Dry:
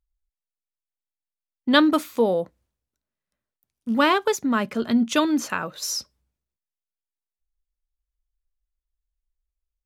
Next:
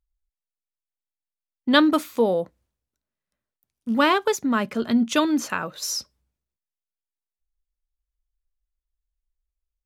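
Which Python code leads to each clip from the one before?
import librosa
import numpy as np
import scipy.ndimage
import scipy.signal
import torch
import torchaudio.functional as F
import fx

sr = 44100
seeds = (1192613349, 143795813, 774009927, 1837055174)

y = x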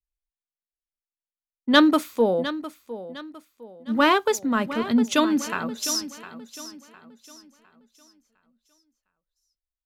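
y = 10.0 ** (-3.5 / 20.0) * np.tanh(x / 10.0 ** (-3.5 / 20.0))
y = fx.echo_feedback(y, sr, ms=707, feedback_pct=49, wet_db=-10.5)
y = fx.band_widen(y, sr, depth_pct=40)
y = y * 10.0 ** (-1.0 / 20.0)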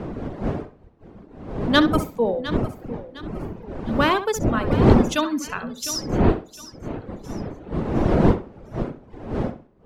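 y = fx.dmg_wind(x, sr, seeds[0], corner_hz=360.0, level_db=-22.0)
y = fx.dereverb_blind(y, sr, rt60_s=0.95)
y = fx.echo_tape(y, sr, ms=66, feedback_pct=24, wet_db=-9.5, lp_hz=2800.0, drive_db=5.0, wow_cents=6)
y = y * 10.0 ** (-1.0 / 20.0)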